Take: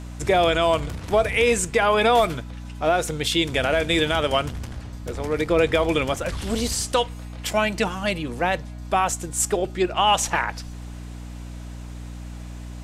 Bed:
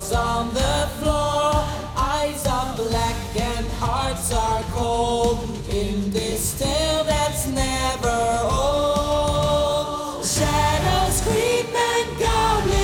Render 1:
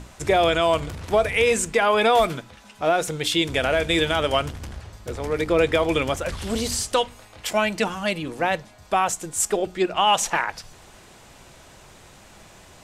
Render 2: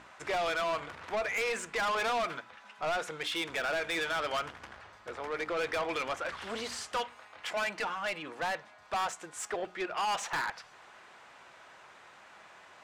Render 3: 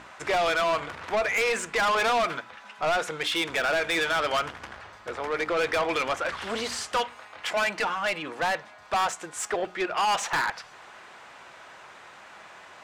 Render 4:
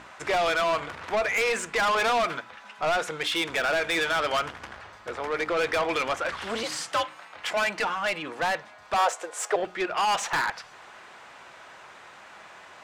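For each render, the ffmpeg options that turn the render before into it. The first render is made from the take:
-af "bandreject=f=60:t=h:w=6,bandreject=f=120:t=h:w=6,bandreject=f=180:t=h:w=6,bandreject=f=240:t=h:w=6,bandreject=f=300:t=h:w=6"
-af "bandpass=f=1.4k:t=q:w=1.1:csg=0,asoftclip=type=tanh:threshold=-28dB"
-af "volume=7dB"
-filter_complex "[0:a]asettb=1/sr,asplit=3[a][b][c];[a]atrim=end=6.634[d];[b]atrim=start=6.63:end=7.34,asetpts=PTS-STARTPTS,afade=t=in:d=0.004:c=qsin,afade=t=out:st=0.706:d=0.004:c=qsin,afreqshift=69[e];[c]atrim=start=7.336[f];[d][e]acrossfade=d=0.004:c1=hsin:c2=qsin[g];[g][f]acrossfade=d=0.004:c1=qsin:c2=hsin,asettb=1/sr,asplit=3[h][i][j];[h]atrim=end=8.984[k];[i]atrim=start=8.98:end=9.56,asetpts=PTS-STARTPTS,afade=t=in:d=0.004:c=qsin,afade=t=out:st=0.576:d=0.004:c=qsin,highpass=f=510:t=q:w=3[l];[j]atrim=start=9.556[m];[k][l]acrossfade=d=0.004:c1=hsin:c2=qsin[n];[n][m]acrossfade=d=0.004:c1=qsin:c2=hsin"

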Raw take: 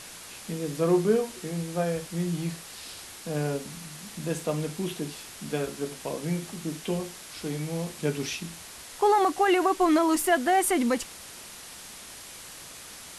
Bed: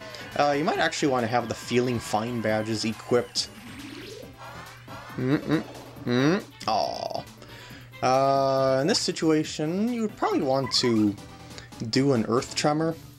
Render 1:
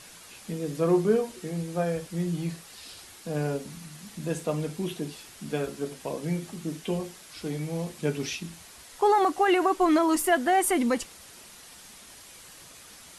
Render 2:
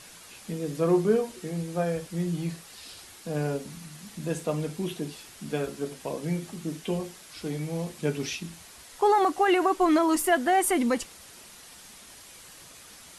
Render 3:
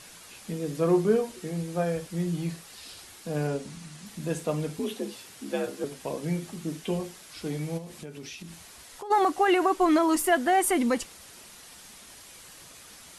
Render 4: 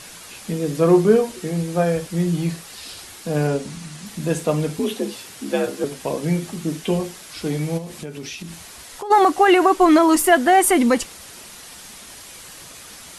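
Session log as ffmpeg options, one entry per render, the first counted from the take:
-af "afftdn=nr=6:nf=-44"
-af anull
-filter_complex "[0:a]asettb=1/sr,asplit=3[a][b][c];[a]atrim=end=3.474[d];[b]atrim=start=3.47:end=4.06,asetpts=PTS-STARTPTS,afade=t=in:d=0.004:c=qsin,afade=t=out:st=0.586:d=0.004:c=qsin,lowpass=f=10k:w=0.5412,lowpass=f=10k:w=1.3066[e];[c]atrim=start=4.056[f];[d][e]acrossfade=d=0.004:c1=hsin:c2=qsin[g];[g][f]acrossfade=d=0.004:c1=qsin:c2=hsin,asettb=1/sr,asplit=3[h][i][j];[h]atrim=end=4.794[k];[i]atrim=start=4.79:end=5.84,asetpts=PTS-STARTPTS,afade=t=in:d=0.004:c=qsin,afade=t=out:st=1.046:d=0.004:c=qsin,afreqshift=58[l];[j]atrim=start=5.836[m];[k][l]acrossfade=d=0.004:c1=hsin:c2=qsin[n];[n][m]acrossfade=d=0.004:c1=qsin:c2=hsin,asplit=3[o][p][q];[o]afade=t=out:st=7.77:d=0.02[r];[p]acompressor=threshold=-38dB:ratio=5:attack=3.2:release=140:knee=1:detection=peak,afade=t=in:st=7.77:d=0.02,afade=t=out:st=9.1:d=0.02[s];[q]afade=t=in:st=9.1:d=0.02[t];[r][s][t]amix=inputs=3:normalize=0"
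-af "volume=8.5dB"

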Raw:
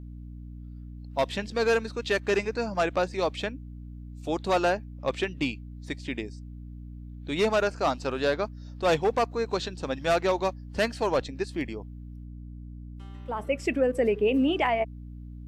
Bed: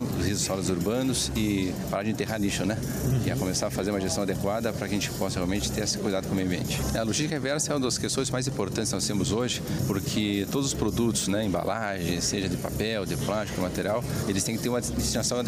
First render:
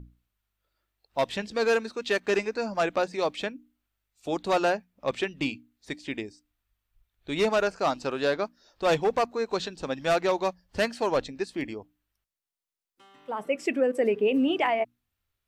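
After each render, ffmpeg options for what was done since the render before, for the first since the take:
-af "bandreject=f=60:t=h:w=6,bandreject=f=120:t=h:w=6,bandreject=f=180:t=h:w=6,bandreject=f=240:t=h:w=6,bandreject=f=300:t=h:w=6"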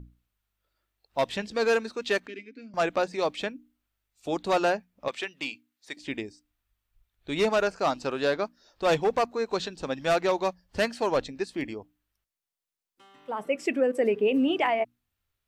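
-filter_complex "[0:a]asettb=1/sr,asplit=3[a][b][c];[a]atrim=end=2.274[d];[b]atrim=start=2.27:end=2.74,asetpts=PTS-STARTPTS,afade=t=in:d=0.004:c=qsin,afade=t=out:st=0.466:d=0.004:c=qsin,asplit=3[e][f][g];[e]bandpass=f=270:t=q:w=8,volume=0dB[h];[f]bandpass=f=2.29k:t=q:w=8,volume=-6dB[i];[g]bandpass=f=3.01k:t=q:w=8,volume=-9dB[j];[h][i][j]amix=inputs=3:normalize=0[k];[c]atrim=start=2.736[l];[d][k]acrossfade=d=0.004:c1=hsin:c2=qsin[m];[m][l]acrossfade=d=0.004:c1=qsin:c2=hsin,asettb=1/sr,asplit=3[n][o][p];[n]atrim=end=5.084[q];[o]atrim=start=5.08:end=5.97,asetpts=PTS-STARTPTS,afade=t=in:d=0.004:c=qsin,afade=t=out:st=0.886:d=0.004:c=qsin,highpass=f=940:p=1[r];[p]atrim=start=5.966[s];[q][r]acrossfade=d=0.004:c1=hsin:c2=qsin[t];[t][s]acrossfade=d=0.004:c1=qsin:c2=hsin"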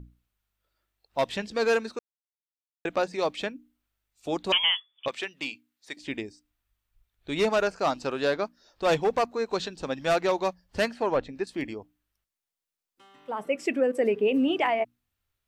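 -filter_complex "[0:a]asettb=1/sr,asplit=3[a][b][c];[a]atrim=end=4.524[d];[b]atrim=start=4.52:end=5.06,asetpts=PTS-STARTPTS,afade=t=in:d=0.004:c=qsin,afade=t=out:st=0.536:d=0.004:c=qsin,lowpass=f=3.1k:t=q:w=0.5098,lowpass=f=3.1k:t=q:w=0.6013,lowpass=f=3.1k:t=q:w=0.9,lowpass=f=3.1k:t=q:w=2.563,afreqshift=-3600[e];[c]atrim=start=5.056[f];[d][e]acrossfade=d=0.004:c1=hsin:c2=qsin[g];[g][f]acrossfade=d=0.004:c1=qsin:c2=hsin,asettb=1/sr,asplit=3[h][i][j];[h]atrim=end=10.894[k];[i]atrim=start=10.89:end=11.47,asetpts=PTS-STARTPTS,afade=t=in:d=0.004:c=qsin,afade=t=out:st=0.576:d=0.004:c=qsin,acrossover=split=2800[l][m];[m]acompressor=threshold=-56dB:ratio=4:attack=1:release=60[n];[l][n]amix=inputs=2:normalize=0[o];[j]atrim=start=11.466[p];[k][o]acrossfade=d=0.004:c1=hsin:c2=qsin[q];[q][p]acrossfade=d=0.004:c1=qsin:c2=hsin,asplit=3[r][s][t];[r]atrim=end=1.99,asetpts=PTS-STARTPTS,afade=t=out:st=1.986:d=0.004:c=hsin[u];[s]atrim=start=1.99:end=2.85,asetpts=PTS-STARTPTS,volume=0[v];[t]atrim=start=2.85,asetpts=PTS-STARTPTS,afade=t=in:d=0.004:c=hsin[w];[u][v][w]concat=n=3:v=0:a=1"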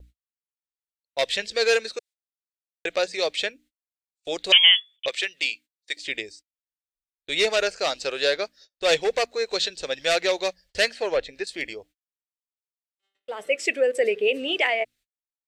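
-af "agate=range=-37dB:threshold=-51dB:ratio=16:detection=peak,equalizer=f=125:t=o:w=1:g=-9,equalizer=f=250:t=o:w=1:g=-12,equalizer=f=500:t=o:w=1:g=8,equalizer=f=1k:t=o:w=1:g=-10,equalizer=f=2k:t=o:w=1:g=8,equalizer=f=4k:t=o:w=1:g=9,equalizer=f=8k:t=o:w=1:g=9"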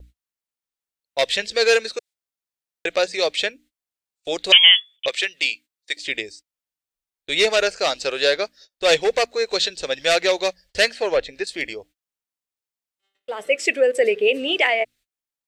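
-af "volume=4dB,alimiter=limit=-2dB:level=0:latency=1"

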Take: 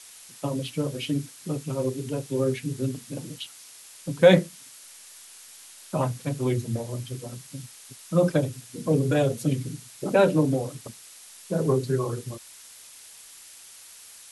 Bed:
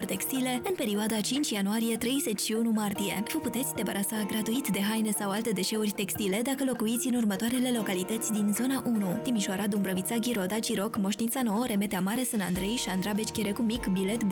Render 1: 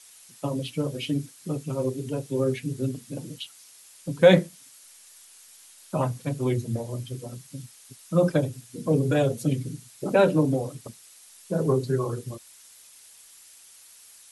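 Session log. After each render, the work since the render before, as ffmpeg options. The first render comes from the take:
-af "afftdn=nr=6:nf=-48"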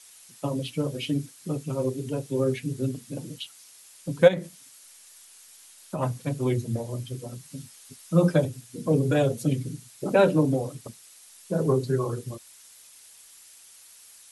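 -filter_complex "[0:a]asplit=3[a][b][c];[a]afade=t=out:st=4.27:d=0.02[d];[b]acompressor=threshold=-26dB:ratio=5:attack=3.2:release=140:knee=1:detection=peak,afade=t=in:st=4.27:d=0.02,afade=t=out:st=6.01:d=0.02[e];[c]afade=t=in:st=6.01:d=0.02[f];[d][e][f]amix=inputs=3:normalize=0,asettb=1/sr,asplit=3[g][h][i];[g]atrim=end=7.424[j];[h]atrim=start=7.42:end=8.45,asetpts=PTS-STARTPTS,afade=t=in:d=0.004:c=qsin,afade=t=out:st=1.026:d=0.004:c=qsin,asplit=2[k][l];[l]adelay=12,volume=-5dB[m];[k][m]amix=inputs=2:normalize=0,atrim=end_sample=45423[n];[i]atrim=start=8.446[o];[j][n]acrossfade=d=0.004:c1=hsin:c2=qsin[p];[p][o]acrossfade=d=0.004:c1=qsin:c2=hsin"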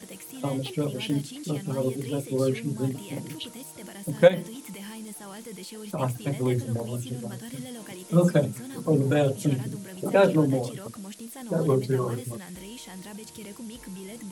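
-filter_complex "[1:a]volume=-11.5dB[a];[0:a][a]amix=inputs=2:normalize=0"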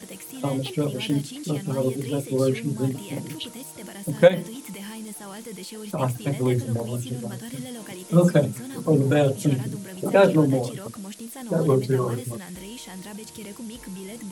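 -af "volume=3dB,alimiter=limit=-2dB:level=0:latency=1"

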